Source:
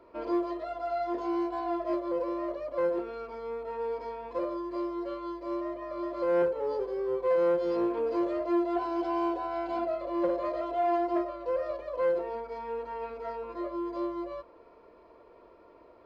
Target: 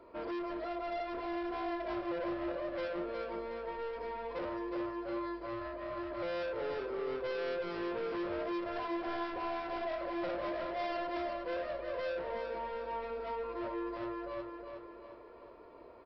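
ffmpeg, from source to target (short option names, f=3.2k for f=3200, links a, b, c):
-af "aresample=11025,asoftclip=type=tanh:threshold=-36dB,aresample=44100,aecho=1:1:364|728|1092|1456|1820|2184:0.501|0.241|0.115|0.0554|0.0266|0.0128"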